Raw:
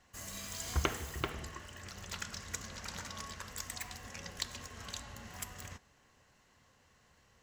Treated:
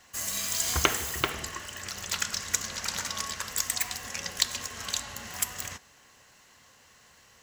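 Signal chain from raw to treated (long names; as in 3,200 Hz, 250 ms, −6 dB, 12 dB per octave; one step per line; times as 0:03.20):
spectral tilt +2 dB per octave
level +8.5 dB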